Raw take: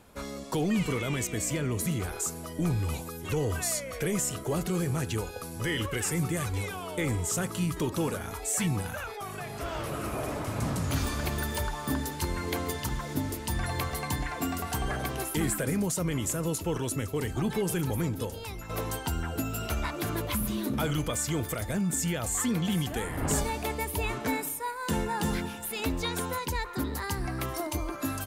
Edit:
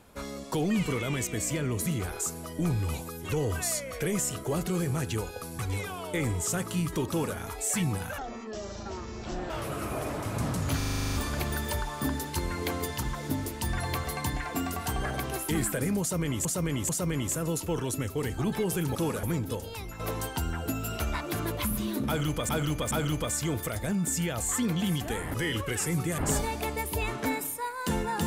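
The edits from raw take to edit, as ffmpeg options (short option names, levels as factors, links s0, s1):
-filter_complex "[0:a]asplit=21[s0][s1][s2][s3][s4][s5][s6][s7][s8][s9][s10][s11][s12][s13][s14][s15][s16][s17][s18][s19][s20];[s0]atrim=end=5.592[s21];[s1]atrim=start=6.428:end=9.024[s22];[s2]atrim=start=9.02:end=9.72,asetpts=PTS-STARTPTS,asetrate=23373,aresample=44100,atrim=end_sample=58245,asetpts=PTS-STARTPTS[s23];[s3]atrim=start=9.716:end=11.032[s24];[s4]atrim=start=10.988:end=11.032[s25];[s5]atrim=start=10.988:end=11.032[s26];[s6]atrim=start=10.988:end=11.032[s27];[s7]atrim=start=10.988:end=11.032[s28];[s8]atrim=start=10.988:end=11.032[s29];[s9]atrim=start=10.988:end=11.032[s30];[s10]atrim=start=10.988:end=11.032[s31];[s11]atrim=start=10.988:end=11.032[s32];[s12]atrim=start=10.988:end=16.312[s33];[s13]atrim=start=15.868:end=16.312[s34];[s14]atrim=start=15.868:end=17.932[s35];[s15]atrim=start=7.928:end=8.212[s36];[s16]atrim=start=17.928:end=21.192[s37];[s17]atrim=start=20.768:end=21.192[s38];[s18]atrim=start=20.768:end=23.202[s39];[s19]atrim=start=5.588:end=6.432[s40];[s20]atrim=start=23.198[s41];[s21][s22]acrossfade=d=0.004:c1=hsin:c2=hsin[s42];[s42][s23]acrossfade=d=0.004:c1=hsin:c2=hsin[s43];[s43][s24]acrossfade=d=0.004:c1=hsin:c2=hsin[s44];[s44][s25]acrossfade=d=0.004:c1=hsin:c2=hsin[s45];[s45][s26]acrossfade=d=0.004:c1=hsin:c2=hsin[s46];[s46][s27]acrossfade=d=0.004:c1=hsin:c2=hsin[s47];[s47][s28]acrossfade=d=0.004:c1=hsin:c2=hsin[s48];[s48][s29]acrossfade=d=0.004:c1=hsin:c2=hsin[s49];[s49][s30]acrossfade=d=0.004:c1=hsin:c2=hsin[s50];[s50][s31]acrossfade=d=0.004:c1=hsin:c2=hsin[s51];[s51][s32]acrossfade=d=0.004:c1=hsin:c2=hsin[s52];[s52][s33]acrossfade=d=0.004:c1=hsin:c2=hsin[s53];[s53][s34]acrossfade=d=0.004:c1=hsin:c2=hsin[s54];[s54][s35]acrossfade=d=0.004:c1=hsin:c2=hsin[s55];[s55][s36]acrossfade=d=0.004:c1=hsin:c2=hsin[s56];[s56][s37]acrossfade=d=0.004:c1=hsin:c2=hsin[s57];[s57][s38]acrossfade=d=0.004:c1=hsin:c2=hsin[s58];[s58][s39]acrossfade=d=0.004:c1=hsin:c2=hsin[s59];[s59][s40]acrossfade=d=0.004:c1=hsin:c2=hsin[s60];[s60][s41]acrossfade=d=0.004:c1=hsin:c2=hsin"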